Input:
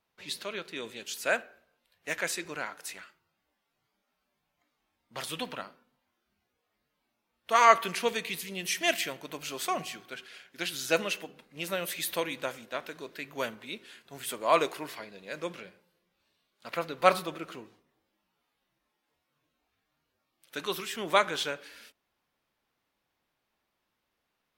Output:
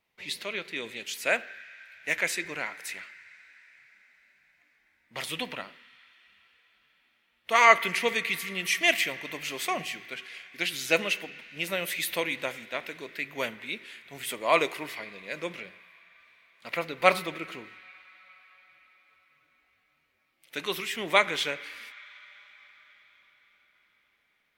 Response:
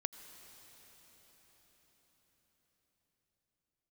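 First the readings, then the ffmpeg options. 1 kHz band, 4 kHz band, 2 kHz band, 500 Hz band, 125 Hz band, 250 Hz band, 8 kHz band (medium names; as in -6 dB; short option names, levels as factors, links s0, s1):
0.0 dB, +3.0 dB, +6.0 dB, +0.5 dB, +1.0 dB, +1.0 dB, +0.5 dB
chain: -filter_complex "[0:a]asplit=2[s0][s1];[s1]highpass=f=2000:t=q:w=4.3[s2];[1:a]atrim=start_sample=2205,lowpass=3900[s3];[s2][s3]afir=irnorm=-1:irlink=0,volume=0.473[s4];[s0][s4]amix=inputs=2:normalize=0,volume=1.12"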